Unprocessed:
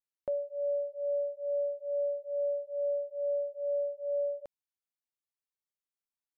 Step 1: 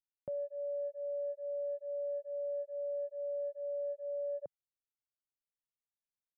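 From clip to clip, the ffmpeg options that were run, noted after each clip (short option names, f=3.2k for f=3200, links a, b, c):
-af "anlmdn=0.631,equalizer=f=140:w=0.69:g=14.5,areverse,acompressor=threshold=-37dB:ratio=10,areverse,volume=1dB"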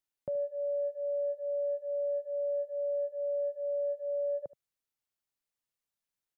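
-af "aecho=1:1:75:0.119,volume=4.5dB"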